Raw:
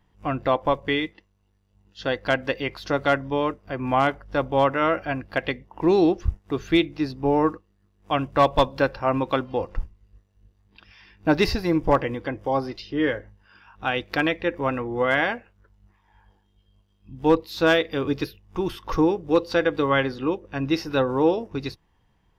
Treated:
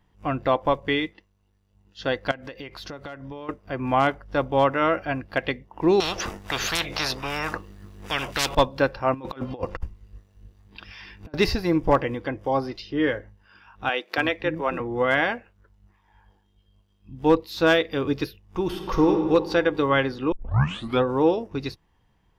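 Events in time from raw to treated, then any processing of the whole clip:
2.31–3.49 compressor 12:1, threshold -33 dBFS
6–8.55 spectral compressor 10:1
9.14–11.34 negative-ratio compressor -31 dBFS, ratio -0.5
13.89–14.8 bands offset in time highs, lows 0.28 s, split 280 Hz
18.62–19.14 reverb throw, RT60 1.9 s, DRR 3.5 dB
20.32 tape start 0.71 s

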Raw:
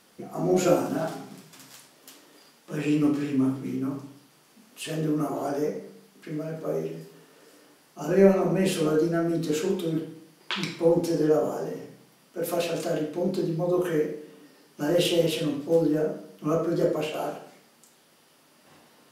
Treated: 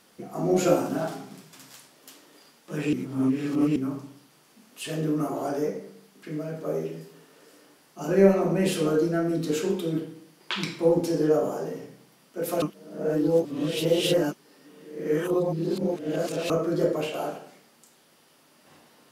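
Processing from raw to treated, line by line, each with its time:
2.93–3.76 reverse
12.62–16.5 reverse

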